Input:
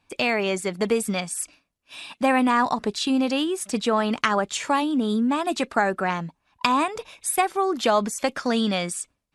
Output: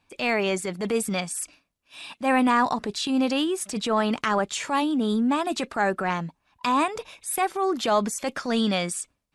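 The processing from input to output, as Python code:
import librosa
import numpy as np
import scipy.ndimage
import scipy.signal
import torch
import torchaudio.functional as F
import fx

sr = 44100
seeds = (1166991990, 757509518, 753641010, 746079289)

y = fx.transient(x, sr, attack_db=-8, sustain_db=0)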